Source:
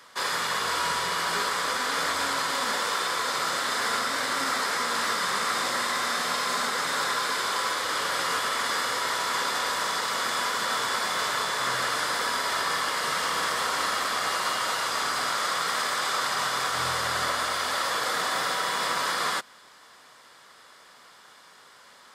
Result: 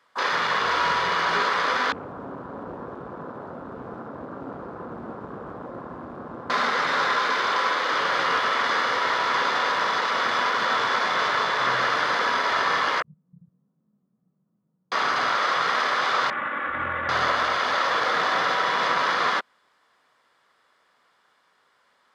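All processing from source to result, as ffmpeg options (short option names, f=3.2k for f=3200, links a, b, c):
-filter_complex "[0:a]asettb=1/sr,asplit=3[a][b][c];[a]atrim=end=1.924[d];[b]atrim=start=1.92:end=6.5,asetpts=PTS-STARTPTS,afade=t=in:d=0.004:c=qsin,afade=t=out:st=4.576:d=0.004:c=qsin,aeval=exprs='(mod(11.9*val(0)+1,2)-1)/11.9':c=same,bandpass=f=210:t=q:w=0.71[e];[c]atrim=start=6.496[f];[d][e]acrossfade=d=0.004:c1=hsin:c2=qsin[g];[g][f]acrossfade=d=0.004:c1=qsin:c2=hsin,asettb=1/sr,asplit=3[h][i][j];[h]atrim=end=13.024[k];[i]atrim=start=13.02:end=14.92,asetpts=PTS-STARTPTS,afade=t=in:d=0.004:c=qsin,afade=t=out:st=1.896:d=0.004:c=qsin,flanger=delay=18.5:depth=4.3:speed=1.3,asuperpass=centerf=170:order=4:qfactor=2.7[l];[j]atrim=start=14.916[m];[k][l]acrossfade=d=0.004:c1=hsin:c2=qsin[n];[n][m]acrossfade=d=0.004:c1=qsin:c2=hsin,asettb=1/sr,asplit=3[o][p][q];[o]atrim=end=16.304[r];[p]atrim=start=16.3:end=17.09,asetpts=PTS-STARTPTS,afade=t=in:d=0.004:c=qsin,afade=t=out:st=0.786:d=0.004:c=qsin,lowpass=f=2.2k:w=0.5412,lowpass=f=2.2k:w=1.3066,equalizer=f=800:t=o:w=1.8:g=-10,aecho=1:1:3.5:0.75,atrim=end_sample=34839[s];[q]atrim=start=17.086[t];[r][s]acrossfade=d=0.004:c1=hsin:c2=qsin[u];[u][t]acrossfade=d=0.004:c1=qsin:c2=hsin,afwtdn=0.0141,bass=f=250:g=-2,treble=f=4k:g=-10,volume=5.5dB"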